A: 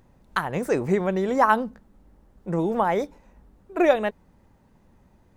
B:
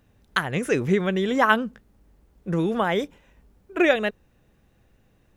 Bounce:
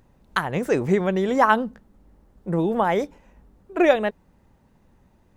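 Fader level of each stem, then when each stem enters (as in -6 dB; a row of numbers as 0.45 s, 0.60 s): -1.0 dB, -9.0 dB; 0.00 s, 0.00 s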